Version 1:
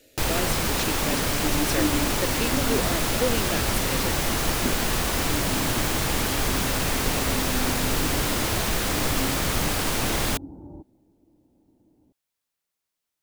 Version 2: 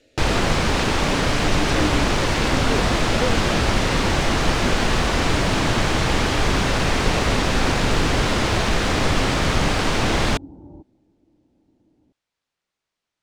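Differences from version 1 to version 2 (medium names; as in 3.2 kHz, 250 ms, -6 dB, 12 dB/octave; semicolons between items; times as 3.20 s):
first sound +6.5 dB; master: add distance through air 100 m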